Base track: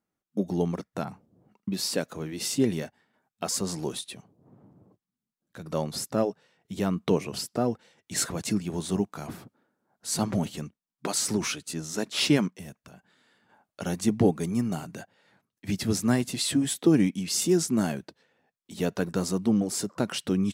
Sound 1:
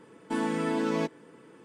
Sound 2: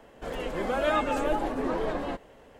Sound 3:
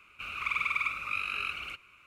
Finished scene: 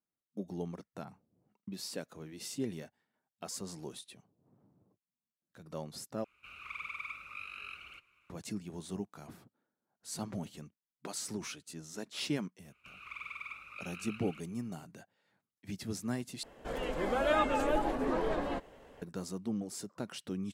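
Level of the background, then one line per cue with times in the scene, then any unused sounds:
base track -12.5 dB
6.24 replace with 3 -12 dB
12.65 add 3 -14 dB
16.43 replace with 2 -3 dB
not used: 1

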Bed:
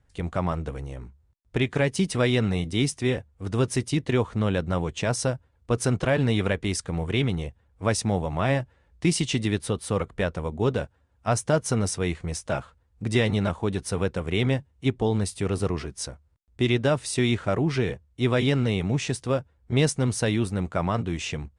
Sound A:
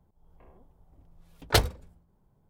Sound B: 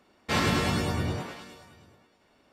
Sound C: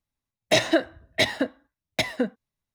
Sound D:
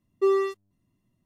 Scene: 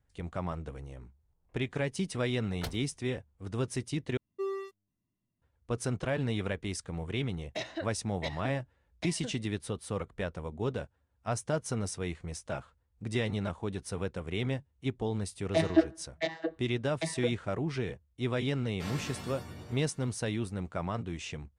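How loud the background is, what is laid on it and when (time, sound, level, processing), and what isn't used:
bed -9 dB
1.09 add A -17.5 dB
4.17 replace with D -13 dB
7.04 add C -17 dB + LPF 6100 Hz
15.02 add C -5 dB + vocoder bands 32, saw 162 Hz
18.51 add B -16.5 dB + high shelf 8200 Hz +8.5 dB

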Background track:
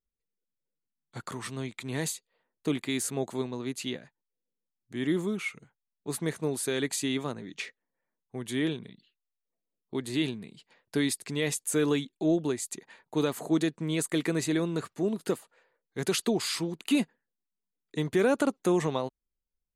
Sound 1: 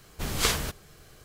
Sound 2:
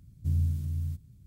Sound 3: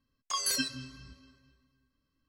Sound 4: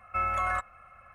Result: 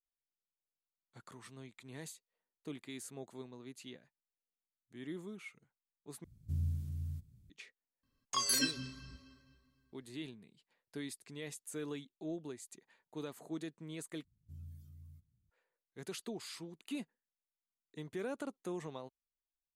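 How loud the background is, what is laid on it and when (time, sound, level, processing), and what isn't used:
background track -16 dB
6.24 replace with 2 -8.5 dB
8.03 add 3 -1.5 dB
14.24 replace with 2 -7.5 dB + spectral noise reduction 16 dB
not used: 1, 4

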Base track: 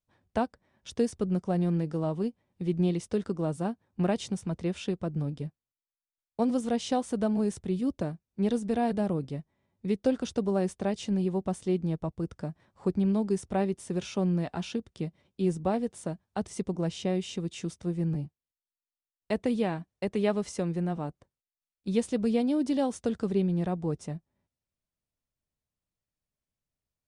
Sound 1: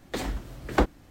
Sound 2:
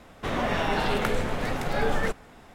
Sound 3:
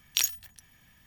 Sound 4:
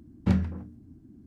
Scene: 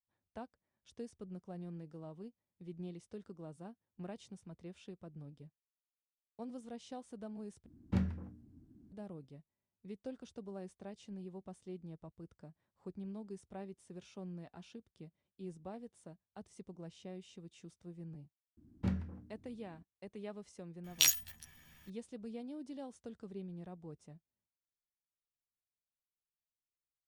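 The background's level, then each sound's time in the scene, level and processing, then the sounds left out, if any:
base track -19 dB
7.66 replace with 4 -9.5 dB
18.57 add 4 -11.5 dB
20.84 add 3 -3.5 dB + doubler 13 ms -2 dB
not used: 1, 2

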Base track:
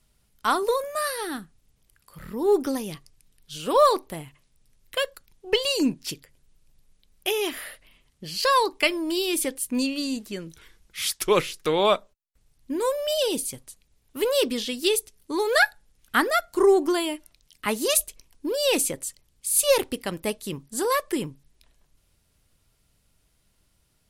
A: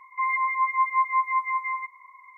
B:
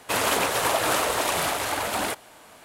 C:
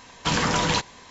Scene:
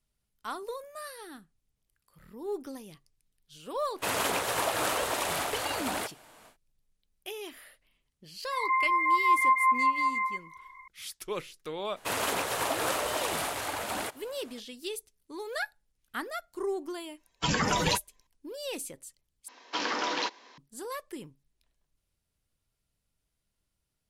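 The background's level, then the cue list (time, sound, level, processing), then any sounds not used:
base track -14.5 dB
3.93 add B -6 dB, fades 0.10 s
8.51 add A -1 dB + backwards sustainer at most 75 dB/s
11.96 add B -7 dB
17.17 add C -1 dB + per-bin expansion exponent 2
19.48 replace with C -6.5 dB + elliptic band-pass 290–5500 Hz

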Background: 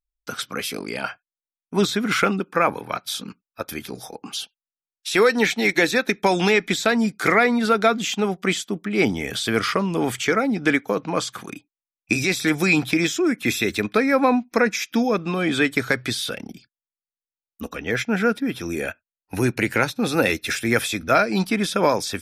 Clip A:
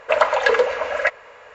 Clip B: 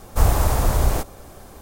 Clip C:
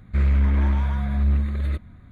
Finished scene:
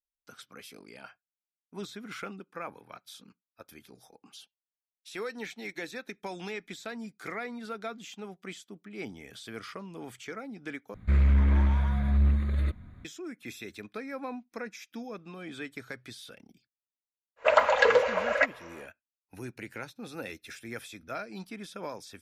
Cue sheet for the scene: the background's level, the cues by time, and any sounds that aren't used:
background -20 dB
10.94 replace with C -3 dB
17.36 add A -4.5 dB, fades 0.10 s
not used: B

